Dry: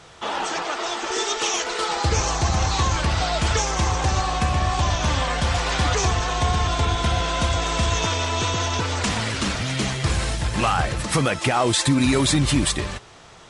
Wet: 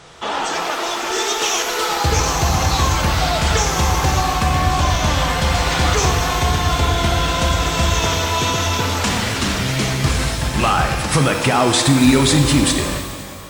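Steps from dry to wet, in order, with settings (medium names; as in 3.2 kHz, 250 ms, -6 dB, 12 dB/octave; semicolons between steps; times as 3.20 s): pitch-shifted reverb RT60 1.9 s, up +12 st, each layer -8 dB, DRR 5 dB; trim +3.5 dB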